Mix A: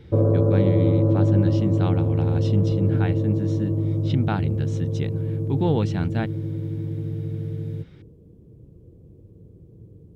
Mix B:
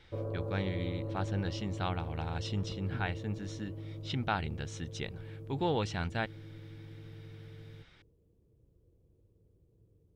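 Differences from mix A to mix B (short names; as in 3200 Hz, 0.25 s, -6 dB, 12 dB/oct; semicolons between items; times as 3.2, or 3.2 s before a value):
background -10.5 dB; master: add bell 190 Hz -13 dB 2.7 oct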